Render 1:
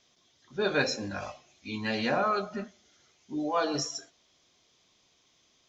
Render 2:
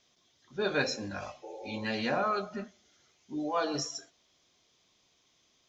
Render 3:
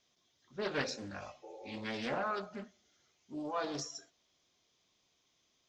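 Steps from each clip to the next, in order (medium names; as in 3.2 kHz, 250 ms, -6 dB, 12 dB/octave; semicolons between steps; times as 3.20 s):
spectral replace 1.46–1.82 s, 330–870 Hz after; trim -2.5 dB
loudspeaker Doppler distortion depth 0.37 ms; trim -6 dB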